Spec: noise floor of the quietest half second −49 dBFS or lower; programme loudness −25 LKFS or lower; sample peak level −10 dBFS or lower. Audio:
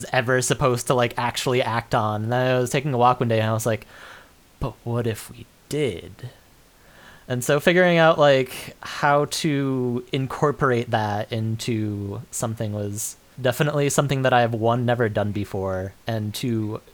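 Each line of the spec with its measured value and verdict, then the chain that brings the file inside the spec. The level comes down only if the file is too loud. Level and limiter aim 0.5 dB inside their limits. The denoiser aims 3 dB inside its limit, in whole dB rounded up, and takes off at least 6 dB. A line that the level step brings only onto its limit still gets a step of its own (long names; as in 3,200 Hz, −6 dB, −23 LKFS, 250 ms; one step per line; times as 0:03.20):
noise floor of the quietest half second −53 dBFS: in spec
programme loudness −22.5 LKFS: out of spec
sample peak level −3.5 dBFS: out of spec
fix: level −3 dB
brickwall limiter −10.5 dBFS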